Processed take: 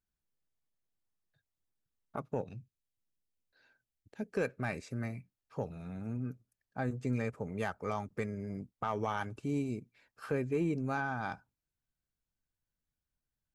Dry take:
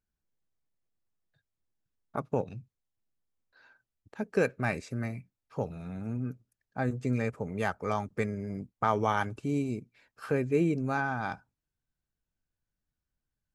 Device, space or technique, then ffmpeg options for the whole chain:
soft clipper into limiter: -filter_complex "[0:a]asoftclip=type=tanh:threshold=0.2,alimiter=limit=0.106:level=0:latency=1:release=217,asettb=1/sr,asplit=3[s0][s1][s2];[s0]atrim=end=2.584[s3];[s1]atrim=start=2.58:end=4.34,asetpts=PTS-STARTPTS,afade=t=in:d=0.004:c=qsin,afade=t=out:st=1.756:d=0.004:c=qsin,equalizer=f=1100:t=o:w=0.95:g=-11.5[s4];[s2]atrim=start=4.336[s5];[s3][s4]acrossfade=d=0.004:c1=hsin:c2=qsin[s6];[s6][s5]acrossfade=d=0.004:c1=qsin:c2=hsin,volume=0.668"

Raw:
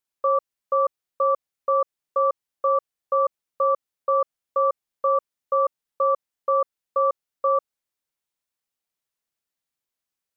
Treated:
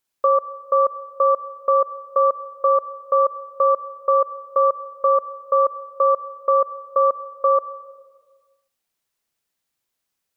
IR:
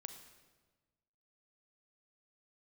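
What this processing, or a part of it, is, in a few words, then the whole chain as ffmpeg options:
ducked reverb: -filter_complex "[0:a]asplit=3[s0][s1][s2];[1:a]atrim=start_sample=2205[s3];[s1][s3]afir=irnorm=-1:irlink=0[s4];[s2]apad=whole_len=457258[s5];[s4][s5]sidechaincompress=threshold=0.0708:ratio=8:attack=16:release=1110,volume=2.37[s6];[s0][s6]amix=inputs=2:normalize=0"

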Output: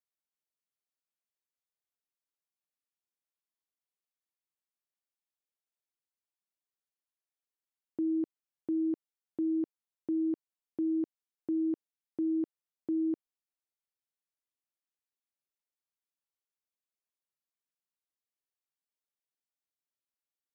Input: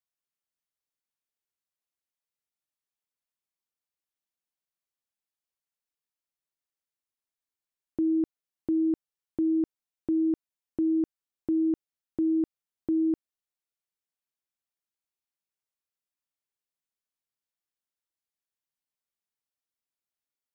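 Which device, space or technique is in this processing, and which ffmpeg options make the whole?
filter by subtraction: -filter_complex "[0:a]asplit=2[s0][s1];[s1]lowpass=320,volume=-1[s2];[s0][s2]amix=inputs=2:normalize=0,volume=0.447"

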